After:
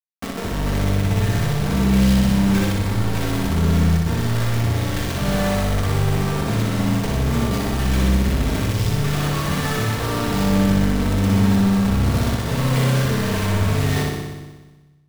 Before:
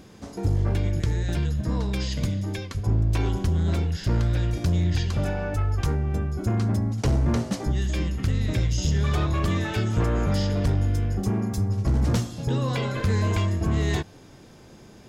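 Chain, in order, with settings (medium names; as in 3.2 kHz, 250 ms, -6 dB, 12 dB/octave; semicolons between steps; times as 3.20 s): low-pass 3 kHz 12 dB/octave; bass shelf 120 Hz -5 dB; reverse; compression 6:1, threshold -33 dBFS, peak gain reduction 11.5 dB; reverse; companded quantiser 2-bit; on a send: flutter echo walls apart 10.5 m, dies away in 1.2 s; on the sum: simulated room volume 1900 m³, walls furnished, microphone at 1.6 m; trim +2 dB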